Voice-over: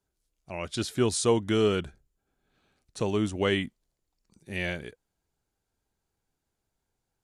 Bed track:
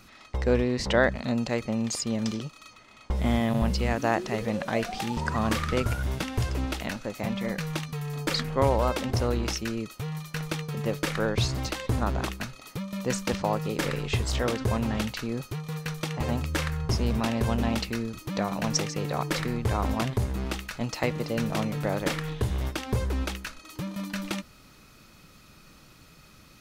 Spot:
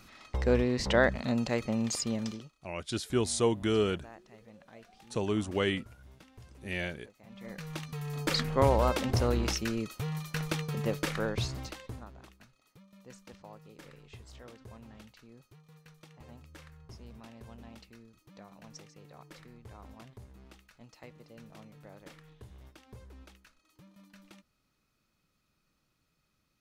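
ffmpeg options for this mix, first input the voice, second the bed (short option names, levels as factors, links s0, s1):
-filter_complex "[0:a]adelay=2150,volume=0.668[s0];[1:a]volume=11.9,afade=t=out:st=2.04:d=0.52:silence=0.0707946,afade=t=in:st=7.26:d=1.14:silence=0.0630957,afade=t=out:st=10.69:d=1.4:silence=0.0794328[s1];[s0][s1]amix=inputs=2:normalize=0"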